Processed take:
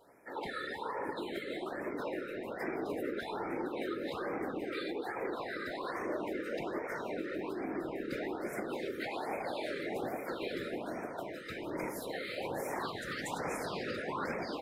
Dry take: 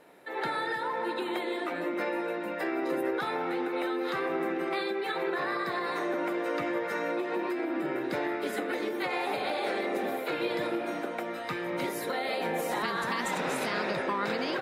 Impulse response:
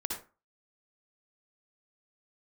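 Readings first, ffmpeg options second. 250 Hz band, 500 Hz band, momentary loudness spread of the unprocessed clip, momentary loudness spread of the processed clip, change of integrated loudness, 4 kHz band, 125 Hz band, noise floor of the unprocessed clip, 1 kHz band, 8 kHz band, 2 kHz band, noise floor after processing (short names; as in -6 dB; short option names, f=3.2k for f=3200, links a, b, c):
-6.5 dB, -6.5 dB, 2 LU, 2 LU, -7.0 dB, -7.5 dB, -3.0 dB, -36 dBFS, -8.0 dB, -6.0 dB, -8.0 dB, -43 dBFS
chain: -af "afftfilt=real='hypot(re,im)*cos(2*PI*random(0))':imag='hypot(re,im)*sin(2*PI*random(1))':win_size=512:overlap=0.75,afftfilt=real='re*(1-between(b*sr/1024,830*pow(3700/830,0.5+0.5*sin(2*PI*1.2*pts/sr))/1.41,830*pow(3700/830,0.5+0.5*sin(2*PI*1.2*pts/sr))*1.41))':imag='im*(1-between(b*sr/1024,830*pow(3700/830,0.5+0.5*sin(2*PI*1.2*pts/sr))/1.41,830*pow(3700/830,0.5+0.5*sin(2*PI*1.2*pts/sr))*1.41))':win_size=1024:overlap=0.75"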